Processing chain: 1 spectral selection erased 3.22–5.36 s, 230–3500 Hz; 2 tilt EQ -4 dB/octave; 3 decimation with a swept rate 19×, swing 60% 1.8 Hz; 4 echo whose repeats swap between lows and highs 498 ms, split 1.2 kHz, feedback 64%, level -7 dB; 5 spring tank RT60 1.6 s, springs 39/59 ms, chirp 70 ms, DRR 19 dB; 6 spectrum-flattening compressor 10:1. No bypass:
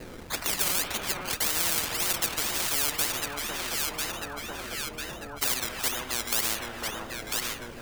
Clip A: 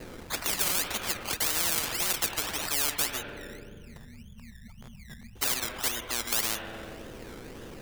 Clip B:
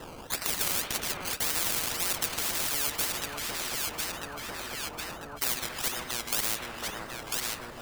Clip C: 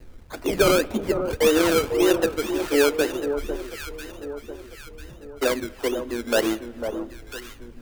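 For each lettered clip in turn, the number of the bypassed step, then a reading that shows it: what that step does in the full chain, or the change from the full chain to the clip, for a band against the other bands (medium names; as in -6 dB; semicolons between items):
4, momentary loudness spread change +9 LU; 2, loudness change -2.0 LU; 6, 500 Hz band +14.5 dB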